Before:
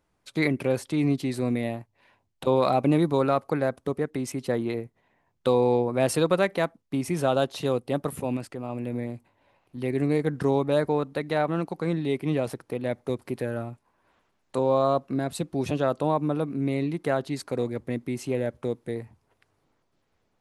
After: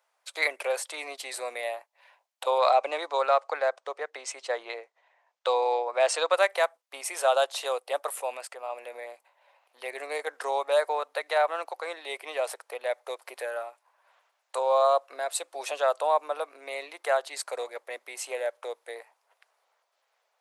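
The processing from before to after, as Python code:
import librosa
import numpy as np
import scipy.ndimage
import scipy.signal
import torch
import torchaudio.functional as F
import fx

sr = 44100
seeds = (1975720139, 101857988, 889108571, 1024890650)

y = fx.lowpass(x, sr, hz=7200.0, slope=24, at=(2.58, 6.34))
y = scipy.signal.sosfilt(scipy.signal.butter(6, 560.0, 'highpass', fs=sr, output='sos'), y)
y = fx.dynamic_eq(y, sr, hz=8100.0, q=2.4, threshold_db=-59.0, ratio=4.0, max_db=6)
y = y * 10.0 ** (3.0 / 20.0)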